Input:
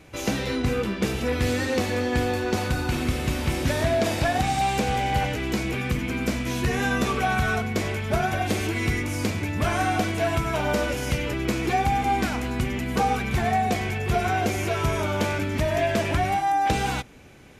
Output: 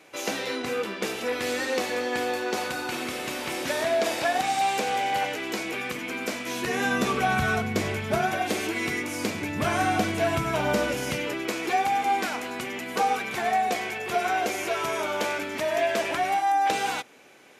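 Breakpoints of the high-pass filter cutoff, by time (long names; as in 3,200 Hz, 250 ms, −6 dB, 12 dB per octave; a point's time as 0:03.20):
0:06.46 390 Hz
0:07.45 100 Hz
0:07.95 100 Hz
0:08.42 270 Hz
0:09.16 270 Hz
0:09.77 120 Hz
0:10.86 120 Hz
0:11.50 400 Hz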